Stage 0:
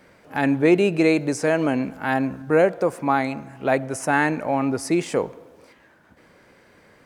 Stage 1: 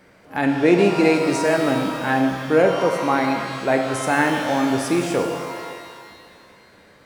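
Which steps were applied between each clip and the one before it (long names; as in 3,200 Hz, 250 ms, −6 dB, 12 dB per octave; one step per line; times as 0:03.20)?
reverb with rising layers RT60 2.1 s, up +12 semitones, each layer −8 dB, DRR 3 dB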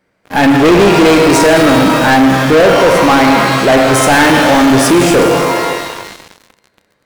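leveller curve on the samples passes 5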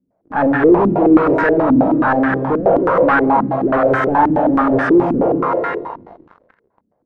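low-pass on a step sequencer 9.4 Hz 250–1,600 Hz
level −9.5 dB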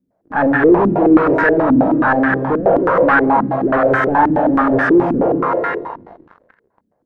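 parametric band 1,700 Hz +4.5 dB 0.39 octaves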